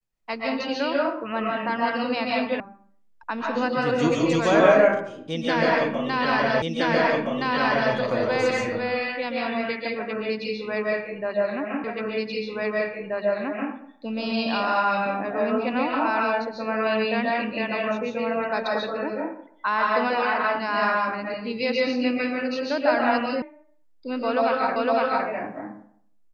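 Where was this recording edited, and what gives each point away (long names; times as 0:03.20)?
0:02.60: cut off before it has died away
0:06.62: the same again, the last 1.32 s
0:11.84: the same again, the last 1.88 s
0:23.42: cut off before it has died away
0:24.76: the same again, the last 0.51 s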